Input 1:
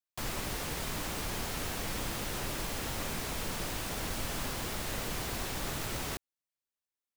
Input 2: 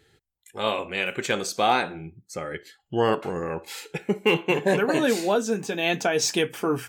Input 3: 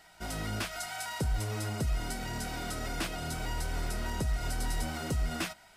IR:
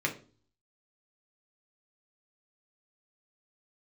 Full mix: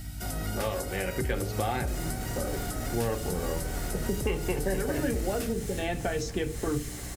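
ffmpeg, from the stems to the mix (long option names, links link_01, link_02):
-filter_complex "[0:a]equalizer=frequency=8700:width=0.59:gain=14,adelay=1700,volume=-9dB,asplit=2[link_01][link_02];[link_02]volume=-6.5dB[link_03];[1:a]aeval=exprs='val(0)+0.01*(sin(2*PI*50*n/s)+sin(2*PI*2*50*n/s)/2+sin(2*PI*3*50*n/s)/3+sin(2*PI*4*50*n/s)/4+sin(2*PI*5*50*n/s)/5)':channel_layout=same,afwtdn=0.0224,volume=-2dB,asplit=2[link_04][link_05];[link_05]volume=-8.5dB[link_06];[2:a]aemphasis=mode=production:type=75fm,volume=2.5dB[link_07];[3:a]atrim=start_sample=2205[link_08];[link_03][link_06]amix=inputs=2:normalize=0[link_09];[link_09][link_08]afir=irnorm=-1:irlink=0[link_10];[link_01][link_04][link_07][link_10]amix=inputs=4:normalize=0,bandreject=frequency=1000:width=5.7,acrossover=split=150|1500[link_11][link_12][link_13];[link_11]acompressor=threshold=-31dB:ratio=4[link_14];[link_12]acompressor=threshold=-30dB:ratio=4[link_15];[link_13]acompressor=threshold=-41dB:ratio=4[link_16];[link_14][link_15][link_16]amix=inputs=3:normalize=0,aeval=exprs='val(0)+0.00891*(sin(2*PI*60*n/s)+sin(2*PI*2*60*n/s)/2+sin(2*PI*3*60*n/s)/3+sin(2*PI*4*60*n/s)/4+sin(2*PI*5*60*n/s)/5)':channel_layout=same"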